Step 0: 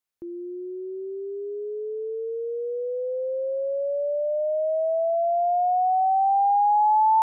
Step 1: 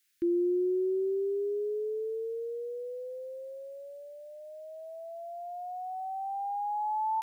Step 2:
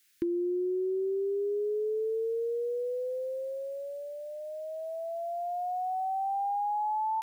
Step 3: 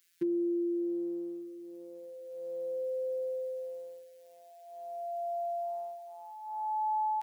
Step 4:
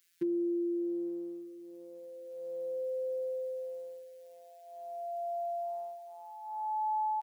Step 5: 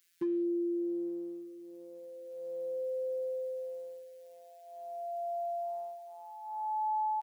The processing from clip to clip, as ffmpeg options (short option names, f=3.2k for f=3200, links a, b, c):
-af "firequalizer=gain_entry='entry(210,0);entry(330,8);entry(590,-24);entry(1600,13)':delay=0.05:min_phase=1,volume=2dB"
-af "acompressor=threshold=-35dB:ratio=10,volume=6.5dB"
-af "afftfilt=real='hypot(re,im)*cos(PI*b)':imag='0':win_size=1024:overlap=0.75,highpass=76"
-filter_complex "[0:a]asplit=2[a][b];[b]adelay=874.6,volume=-23dB,highshelf=f=4k:g=-19.7[c];[a][c]amix=inputs=2:normalize=0,volume=-1dB"
-af "asoftclip=type=hard:threshold=-28dB"